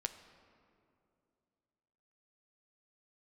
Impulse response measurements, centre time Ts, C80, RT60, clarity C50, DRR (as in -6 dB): 17 ms, 12.0 dB, 2.6 s, 11.0 dB, 7.5 dB